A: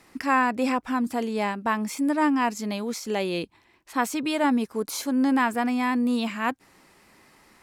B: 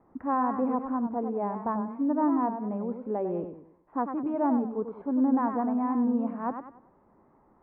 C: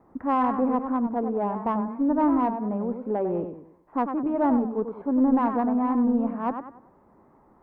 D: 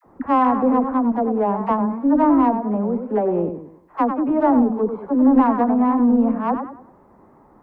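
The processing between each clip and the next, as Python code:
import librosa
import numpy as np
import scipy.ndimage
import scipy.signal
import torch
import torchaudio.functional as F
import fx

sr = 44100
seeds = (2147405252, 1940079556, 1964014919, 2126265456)

y1 = scipy.signal.sosfilt(scipy.signal.cheby2(4, 80, 6000.0, 'lowpass', fs=sr, output='sos'), x)
y1 = fx.echo_warbled(y1, sr, ms=97, feedback_pct=37, rate_hz=2.8, cents=133, wet_db=-8)
y1 = y1 * librosa.db_to_amplitude(-3.0)
y2 = fx.diode_clip(y1, sr, knee_db=-17.0)
y2 = y2 * librosa.db_to_amplitude(4.5)
y3 = fx.dispersion(y2, sr, late='lows', ms=55.0, hz=630.0)
y3 = y3 * librosa.db_to_amplitude(6.5)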